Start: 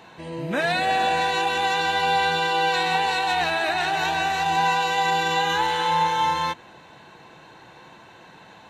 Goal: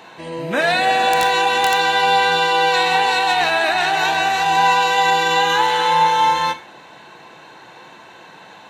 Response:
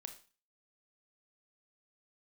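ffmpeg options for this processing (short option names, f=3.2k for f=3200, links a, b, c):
-filter_complex "[0:a]highpass=f=280:p=1,asettb=1/sr,asplit=3[a][b][c];[a]atrim=end=1.104[d];[b]atrim=start=1.1:end=1.76,asetpts=PTS-STARTPTS,afade=t=in:d=0.004:c=qsin,afade=t=out:st=0.656:d=0.004:c=qsin,aeval=exprs='(mod(4.47*val(0)+1,2)-1)/4.47':c=same[e];[c]atrim=start=1.756[f];[d][e]acrossfade=d=0.004:c1=hsin:c2=qsin[g];[g][f]acrossfade=d=0.004:c1=qsin:c2=hsin,asplit=2[h][i];[1:a]atrim=start_sample=2205[j];[i][j]afir=irnorm=-1:irlink=0,volume=6dB[k];[h][k]amix=inputs=2:normalize=0"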